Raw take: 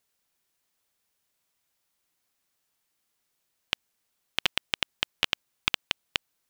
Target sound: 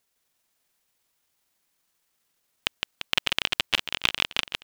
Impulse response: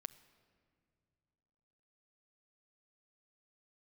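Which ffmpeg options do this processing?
-af "aecho=1:1:210|483|837.9|1299|1899:0.631|0.398|0.251|0.158|0.1,atempo=1.4,volume=2dB"

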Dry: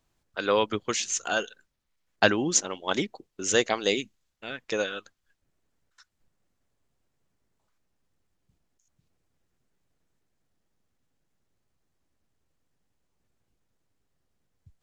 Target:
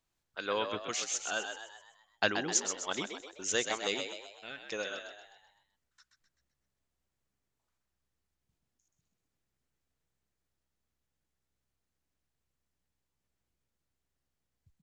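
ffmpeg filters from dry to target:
ffmpeg -i in.wav -filter_complex "[0:a]tiltshelf=frequency=840:gain=-3,asplit=7[link_01][link_02][link_03][link_04][link_05][link_06][link_07];[link_02]adelay=128,afreqshift=65,volume=-7dB[link_08];[link_03]adelay=256,afreqshift=130,volume=-13.2dB[link_09];[link_04]adelay=384,afreqshift=195,volume=-19.4dB[link_10];[link_05]adelay=512,afreqshift=260,volume=-25.6dB[link_11];[link_06]adelay=640,afreqshift=325,volume=-31.8dB[link_12];[link_07]adelay=768,afreqshift=390,volume=-38dB[link_13];[link_01][link_08][link_09][link_10][link_11][link_12][link_13]amix=inputs=7:normalize=0,volume=-9dB" out.wav

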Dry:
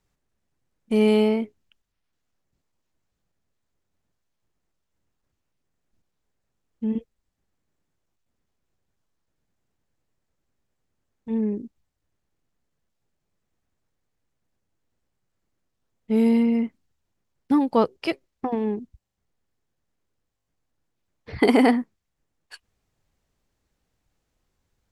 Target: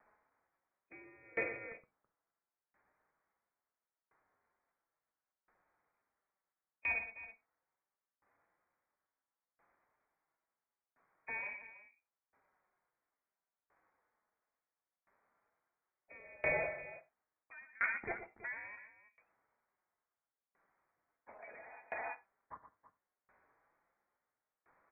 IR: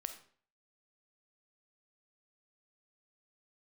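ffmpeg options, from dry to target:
-filter_complex "[0:a]highpass=1400,areverse,acompressor=threshold=-39dB:ratio=8,areverse,alimiter=level_in=15.5dB:limit=-24dB:level=0:latency=1:release=23,volume=-15.5dB,flanger=delay=4.8:depth=1.7:regen=65:speed=0.14:shape=triangular,aecho=1:1:118|327:0.398|0.376,asplit=2[link_01][link_02];[1:a]atrim=start_sample=2205,atrim=end_sample=4410[link_03];[link_02][link_03]afir=irnorm=-1:irlink=0,volume=4.5dB[link_04];[link_01][link_04]amix=inputs=2:normalize=0,lowpass=frequency=2300:width_type=q:width=0.5098,lowpass=frequency=2300:width_type=q:width=0.6013,lowpass=frequency=2300:width_type=q:width=0.9,lowpass=frequency=2300:width_type=q:width=2.563,afreqshift=-2700,aeval=exprs='val(0)*pow(10,-28*if(lt(mod(0.73*n/s,1),2*abs(0.73)/1000),1-mod(0.73*n/s,1)/(2*abs(0.73)/1000),(mod(0.73*n/s,1)-2*abs(0.73)/1000)/(1-2*abs(0.73)/1000))/20)':channel_layout=same,volume=15.5dB"

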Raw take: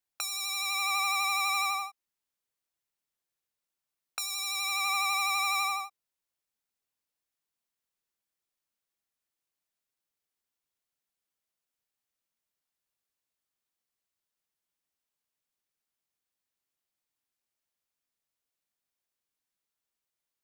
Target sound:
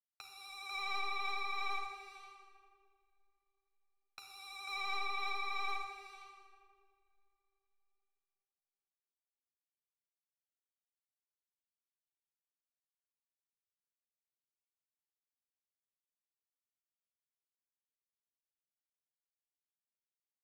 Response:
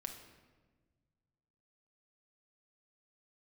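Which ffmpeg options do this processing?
-filter_complex "[0:a]asuperstop=centerf=1800:order=8:qfactor=4.3,aecho=1:1:494:0.376,agate=range=-7dB:threshold=-30dB:ratio=16:detection=peak,acrossover=split=1800|3500[link_01][link_02][link_03];[link_01]aeval=exprs='clip(val(0),-1,0.00708)':channel_layout=same[link_04];[link_04][link_02][link_03]amix=inputs=3:normalize=0,lowpass=frequency=5000:width=0.5412,lowpass=frequency=5000:width=1.3066,aeval=exprs='sgn(val(0))*max(abs(val(0))-0.00422,0)':channel_layout=same,alimiter=level_in=3.5dB:limit=-24dB:level=0:latency=1:release=21,volume=-3.5dB[link_05];[1:a]atrim=start_sample=2205,asetrate=25578,aresample=44100[link_06];[link_05][link_06]afir=irnorm=-1:irlink=0,adynamicequalizer=threshold=0.002:dfrequency=2300:dqfactor=0.7:tfrequency=2300:tqfactor=0.7:attack=5:release=100:ratio=0.375:range=3.5:mode=cutabove:tftype=highshelf,volume=-2dB"

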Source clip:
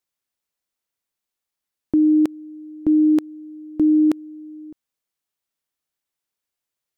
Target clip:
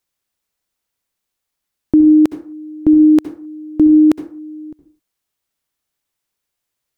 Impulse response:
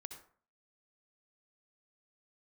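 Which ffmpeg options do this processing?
-filter_complex "[0:a]asplit=2[link_01][link_02];[1:a]atrim=start_sample=2205,afade=type=out:start_time=0.32:duration=0.01,atrim=end_sample=14553,lowshelf=frequency=140:gain=8.5[link_03];[link_02][link_03]afir=irnorm=-1:irlink=0,volume=6dB[link_04];[link_01][link_04]amix=inputs=2:normalize=0"

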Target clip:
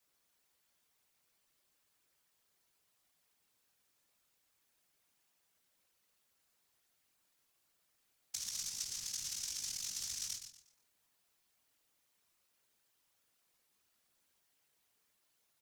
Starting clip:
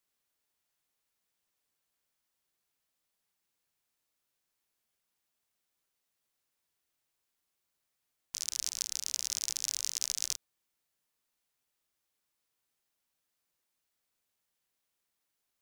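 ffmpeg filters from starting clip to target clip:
ffmpeg -i in.wav -filter_complex "[0:a]flanger=delay=18.5:depth=7.2:speed=0.13,acrossover=split=220[link_01][link_02];[link_02]acompressor=threshold=-49dB:ratio=2.5[link_03];[link_01][link_03]amix=inputs=2:normalize=0,aecho=1:1:120|240|360|480:0.398|0.119|0.0358|0.0107,afftfilt=real='hypot(re,im)*cos(2*PI*random(0))':imag='hypot(re,im)*sin(2*PI*random(1))':win_size=512:overlap=0.75,volume=14dB" out.wav

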